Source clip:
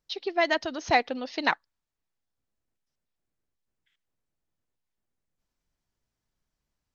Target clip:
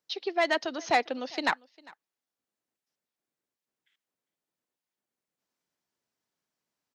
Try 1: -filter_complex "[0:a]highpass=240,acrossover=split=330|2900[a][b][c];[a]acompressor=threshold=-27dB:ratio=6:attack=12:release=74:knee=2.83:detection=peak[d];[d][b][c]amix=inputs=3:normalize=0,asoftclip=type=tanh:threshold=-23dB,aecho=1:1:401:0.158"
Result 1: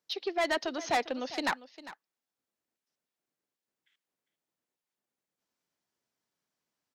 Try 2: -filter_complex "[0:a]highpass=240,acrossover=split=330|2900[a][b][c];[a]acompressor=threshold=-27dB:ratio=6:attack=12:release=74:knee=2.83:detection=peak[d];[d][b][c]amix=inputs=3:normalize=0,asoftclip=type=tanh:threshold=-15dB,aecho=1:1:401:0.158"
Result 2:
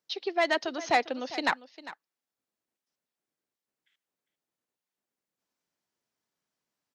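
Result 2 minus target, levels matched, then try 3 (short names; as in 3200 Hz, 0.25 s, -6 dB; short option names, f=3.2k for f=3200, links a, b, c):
echo-to-direct +8 dB
-filter_complex "[0:a]highpass=240,acrossover=split=330|2900[a][b][c];[a]acompressor=threshold=-27dB:ratio=6:attack=12:release=74:knee=2.83:detection=peak[d];[d][b][c]amix=inputs=3:normalize=0,asoftclip=type=tanh:threshold=-15dB,aecho=1:1:401:0.0631"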